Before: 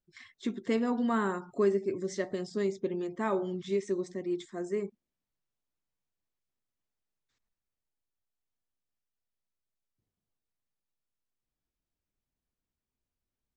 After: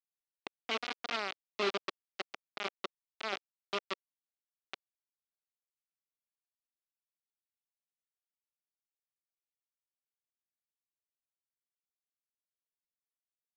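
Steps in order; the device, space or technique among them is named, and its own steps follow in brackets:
hand-held game console (bit reduction 4 bits; loudspeaker in its box 470–4,500 Hz, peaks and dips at 510 Hz −9 dB, 960 Hz −9 dB, 1,700 Hz −7 dB)
level −2 dB

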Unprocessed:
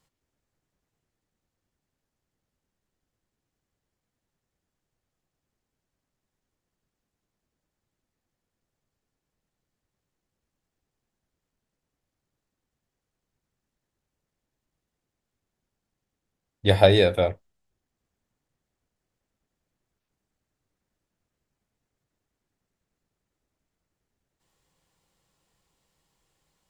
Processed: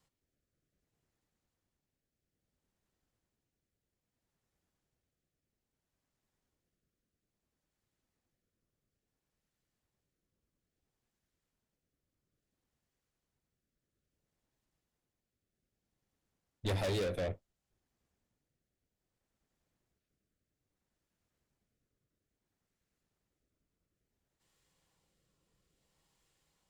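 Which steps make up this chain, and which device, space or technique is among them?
overdriven rotary cabinet (tube saturation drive 28 dB, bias 0.45; rotating-speaker cabinet horn 0.6 Hz)

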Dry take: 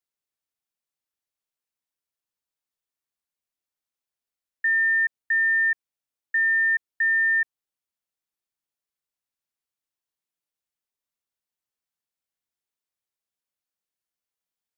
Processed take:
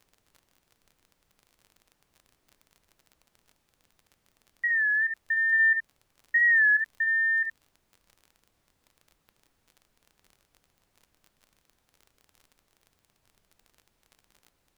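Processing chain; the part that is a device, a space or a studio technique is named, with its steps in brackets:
0:05.52–0:06.88: comb filter 4.9 ms, depth 97%
high-frequency loss of the air 400 metres
ambience of single reflections 37 ms −9 dB, 69 ms −6 dB
warped LP (wow of a warped record 33 1/3 rpm, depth 100 cents; surface crackle 30 per second −42 dBFS; pink noise bed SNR 41 dB)

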